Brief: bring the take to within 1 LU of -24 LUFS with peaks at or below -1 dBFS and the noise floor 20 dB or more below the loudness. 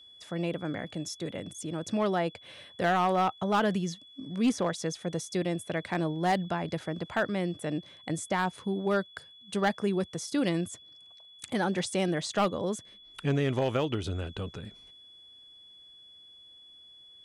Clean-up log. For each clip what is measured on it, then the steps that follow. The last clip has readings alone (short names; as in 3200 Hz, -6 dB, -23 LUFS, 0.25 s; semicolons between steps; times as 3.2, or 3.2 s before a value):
clipped 0.4%; flat tops at -19.5 dBFS; steady tone 3400 Hz; tone level -51 dBFS; loudness -31.0 LUFS; peak -19.5 dBFS; loudness target -24.0 LUFS
-> clip repair -19.5 dBFS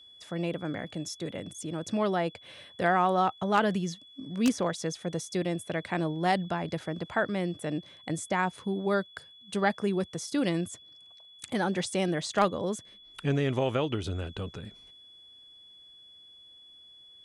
clipped 0.0%; steady tone 3400 Hz; tone level -51 dBFS
-> notch 3400 Hz, Q 30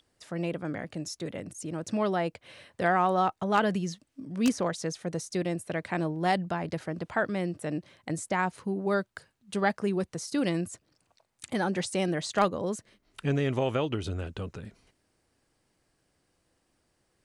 steady tone none; loudness -30.5 LUFS; peak -10.5 dBFS; loudness target -24.0 LUFS
-> gain +6.5 dB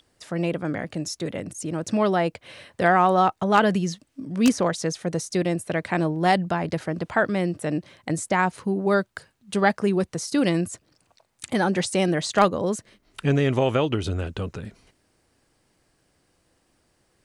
loudness -24.0 LUFS; peak -4.0 dBFS; noise floor -68 dBFS